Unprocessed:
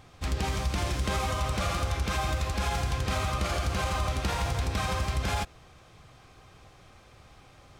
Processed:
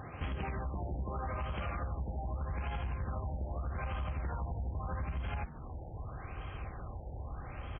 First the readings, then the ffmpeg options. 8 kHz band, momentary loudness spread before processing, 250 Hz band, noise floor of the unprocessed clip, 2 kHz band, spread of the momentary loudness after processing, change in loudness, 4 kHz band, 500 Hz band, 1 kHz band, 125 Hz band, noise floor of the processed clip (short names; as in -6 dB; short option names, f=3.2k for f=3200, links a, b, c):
under -40 dB, 1 LU, -8.0 dB, -55 dBFS, -12.5 dB, 7 LU, -10.0 dB, -20.5 dB, -9.5 dB, -10.0 dB, -6.5 dB, -46 dBFS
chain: -filter_complex "[0:a]highpass=49,asubboost=boost=6.5:cutoff=64,alimiter=limit=-23.5dB:level=0:latency=1:release=172,acompressor=threshold=-45dB:ratio=4,aeval=exprs='clip(val(0),-1,0.00708)':c=same,asplit=2[a][b];[b]asplit=4[c][d][e][f];[c]adelay=151,afreqshift=83,volume=-15.5dB[g];[d]adelay=302,afreqshift=166,volume=-21.7dB[h];[e]adelay=453,afreqshift=249,volume=-27.9dB[i];[f]adelay=604,afreqshift=332,volume=-34.1dB[j];[g][h][i][j]amix=inputs=4:normalize=0[k];[a][k]amix=inputs=2:normalize=0,afftfilt=real='re*lt(b*sr/1024,920*pow(3400/920,0.5+0.5*sin(2*PI*0.81*pts/sr)))':imag='im*lt(b*sr/1024,920*pow(3400/920,0.5+0.5*sin(2*PI*0.81*pts/sr)))':win_size=1024:overlap=0.75,volume=9dB"